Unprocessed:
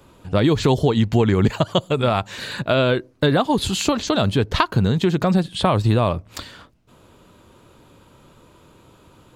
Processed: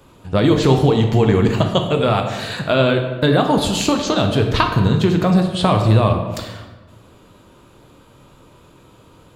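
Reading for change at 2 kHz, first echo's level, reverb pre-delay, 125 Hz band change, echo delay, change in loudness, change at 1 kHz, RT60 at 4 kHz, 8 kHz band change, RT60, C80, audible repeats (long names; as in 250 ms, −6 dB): +2.5 dB, no echo audible, 9 ms, +3.5 dB, no echo audible, +3.0 dB, +3.0 dB, 0.85 s, +2.0 dB, 1.3 s, 8.0 dB, no echo audible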